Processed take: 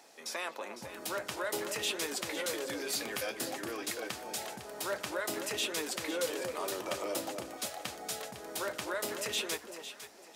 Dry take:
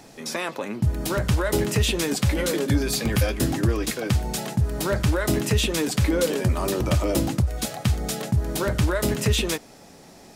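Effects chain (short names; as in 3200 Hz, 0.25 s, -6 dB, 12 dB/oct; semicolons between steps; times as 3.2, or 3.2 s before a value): HPF 520 Hz 12 dB/oct; echo with dull and thin repeats by turns 0.252 s, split 960 Hz, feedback 54%, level -6 dB; gain -8 dB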